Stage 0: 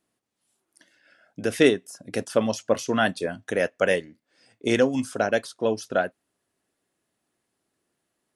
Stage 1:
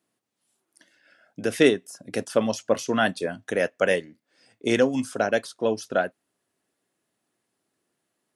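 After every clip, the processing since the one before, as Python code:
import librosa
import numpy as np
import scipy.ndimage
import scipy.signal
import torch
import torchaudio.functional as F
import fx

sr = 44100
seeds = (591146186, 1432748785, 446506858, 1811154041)

y = scipy.signal.sosfilt(scipy.signal.butter(2, 99.0, 'highpass', fs=sr, output='sos'), x)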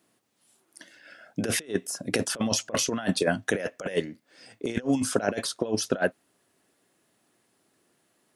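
y = fx.over_compress(x, sr, threshold_db=-28.0, ratio=-0.5)
y = F.gain(torch.from_numpy(y), 2.5).numpy()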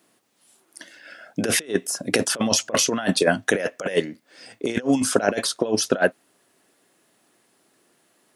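y = fx.low_shelf(x, sr, hz=110.0, db=-12.0)
y = F.gain(torch.from_numpy(y), 6.5).numpy()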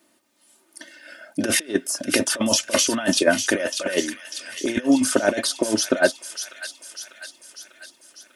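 y = x + 0.72 * np.pad(x, (int(3.3 * sr / 1000.0), 0))[:len(x)]
y = fx.echo_wet_highpass(y, sr, ms=596, feedback_pct=58, hz=2100.0, wet_db=-6.5)
y = F.gain(torch.from_numpy(y), -1.0).numpy()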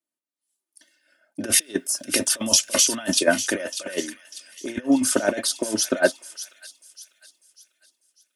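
y = fx.high_shelf(x, sr, hz=6000.0, db=7.5)
y = fx.band_widen(y, sr, depth_pct=70)
y = F.gain(torch.from_numpy(y), -4.5).numpy()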